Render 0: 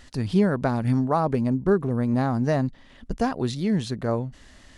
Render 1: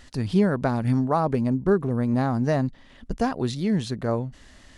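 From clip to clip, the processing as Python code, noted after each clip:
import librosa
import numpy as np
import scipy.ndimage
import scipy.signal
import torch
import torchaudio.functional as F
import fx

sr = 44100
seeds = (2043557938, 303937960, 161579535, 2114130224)

y = x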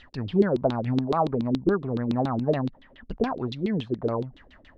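y = fx.filter_lfo_lowpass(x, sr, shape='saw_down', hz=7.1, low_hz=280.0, high_hz=3900.0, q=4.9)
y = fx.dynamic_eq(y, sr, hz=1800.0, q=1.8, threshold_db=-39.0, ratio=4.0, max_db=-5)
y = F.gain(torch.from_numpy(y), -5.0).numpy()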